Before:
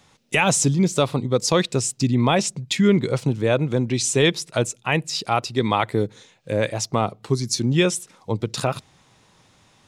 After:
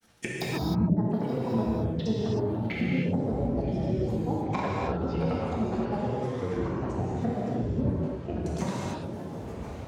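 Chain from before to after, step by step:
treble cut that deepens with the level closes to 360 Hz, closed at −17 dBFS
feedback delay with all-pass diffusion 1,056 ms, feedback 48%, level −11.5 dB
granular cloud, pitch spread up and down by 12 semitones
downward compressor, threshold −24 dBFS, peak gain reduction 9 dB
reverb whose tail is shaped and stops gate 340 ms flat, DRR −5.5 dB
level −6 dB

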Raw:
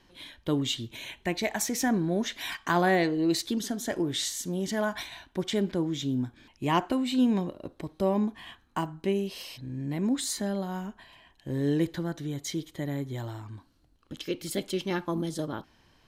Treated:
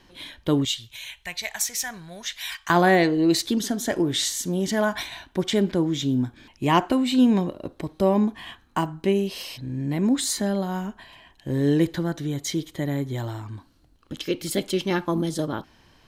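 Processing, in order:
0:00.65–0:02.70: guitar amp tone stack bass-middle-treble 10-0-10
level +6 dB

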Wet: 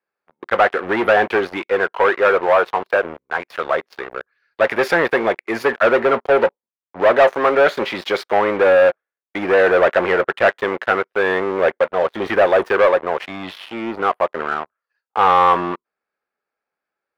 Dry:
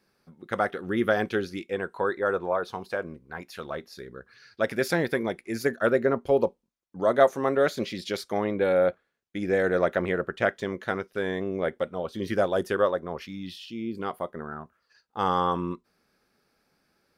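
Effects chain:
leveller curve on the samples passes 5
three-way crossover with the lows and the highs turned down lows −18 dB, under 430 Hz, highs −20 dB, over 2,900 Hz

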